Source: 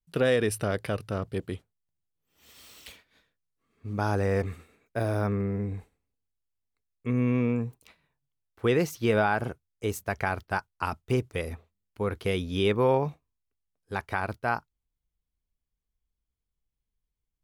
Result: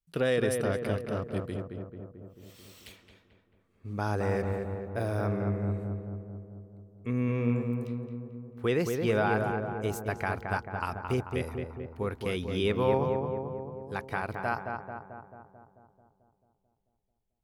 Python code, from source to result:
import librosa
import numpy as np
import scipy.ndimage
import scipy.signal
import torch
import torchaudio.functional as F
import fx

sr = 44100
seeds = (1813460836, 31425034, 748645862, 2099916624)

y = fx.echo_filtered(x, sr, ms=220, feedback_pct=65, hz=1600.0, wet_db=-4)
y = y * librosa.db_to_amplitude(-3.5)